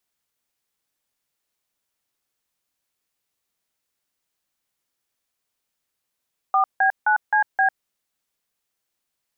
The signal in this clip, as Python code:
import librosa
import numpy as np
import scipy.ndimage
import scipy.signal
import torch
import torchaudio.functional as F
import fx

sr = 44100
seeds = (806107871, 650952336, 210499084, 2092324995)

y = fx.dtmf(sr, digits='4B9CB', tone_ms=100, gap_ms=162, level_db=-17.5)